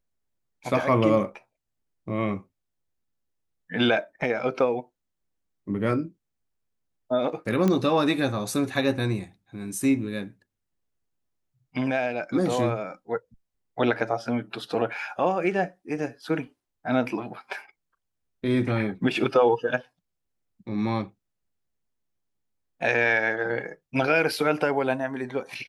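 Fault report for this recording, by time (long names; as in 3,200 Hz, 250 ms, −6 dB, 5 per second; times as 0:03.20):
0:07.68: click −12 dBFS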